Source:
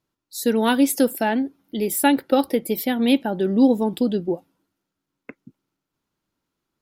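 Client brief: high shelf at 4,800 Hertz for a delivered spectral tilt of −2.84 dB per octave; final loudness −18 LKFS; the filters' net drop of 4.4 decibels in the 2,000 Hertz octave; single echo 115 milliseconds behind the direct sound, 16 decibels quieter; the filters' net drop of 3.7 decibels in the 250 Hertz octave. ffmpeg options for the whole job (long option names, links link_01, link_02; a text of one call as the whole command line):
ffmpeg -i in.wav -af "equalizer=frequency=250:width_type=o:gain=-4,equalizer=frequency=2000:width_type=o:gain=-7.5,highshelf=frequency=4800:gain=8.5,aecho=1:1:115:0.158,volume=4dB" out.wav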